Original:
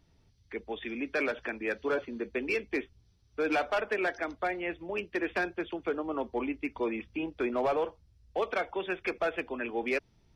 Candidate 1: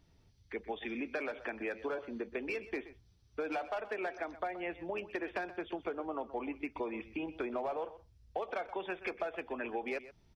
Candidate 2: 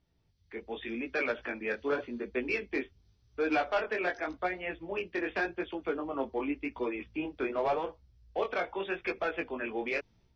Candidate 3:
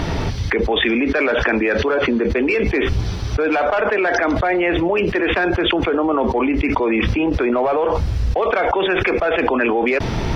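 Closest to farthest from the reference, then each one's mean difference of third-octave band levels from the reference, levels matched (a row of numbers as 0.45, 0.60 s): 2, 1, 3; 2.0, 3.0, 7.0 dB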